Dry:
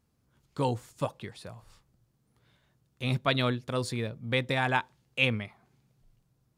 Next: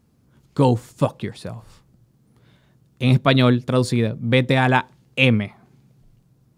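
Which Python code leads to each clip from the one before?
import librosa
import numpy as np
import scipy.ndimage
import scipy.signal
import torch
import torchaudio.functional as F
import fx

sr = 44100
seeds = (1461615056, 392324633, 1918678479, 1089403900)

y = fx.peak_eq(x, sr, hz=210.0, db=7.5, octaves=2.5)
y = F.gain(torch.from_numpy(y), 7.5).numpy()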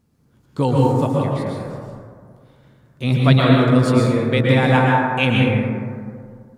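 y = fx.rev_plate(x, sr, seeds[0], rt60_s=2.1, hf_ratio=0.3, predelay_ms=105, drr_db=-4.0)
y = F.gain(torch.from_numpy(y), -3.0).numpy()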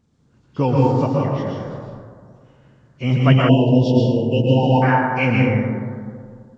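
y = fx.freq_compress(x, sr, knee_hz=1900.0, ratio=1.5)
y = fx.spec_erase(y, sr, start_s=3.49, length_s=1.33, low_hz=1000.0, high_hz=2500.0)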